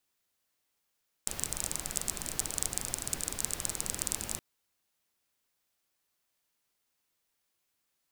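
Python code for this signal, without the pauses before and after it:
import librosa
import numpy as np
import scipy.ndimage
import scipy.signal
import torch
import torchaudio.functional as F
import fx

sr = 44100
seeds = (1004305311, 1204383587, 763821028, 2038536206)

y = fx.rain(sr, seeds[0], length_s=3.12, drops_per_s=23.0, hz=7900.0, bed_db=-5.0)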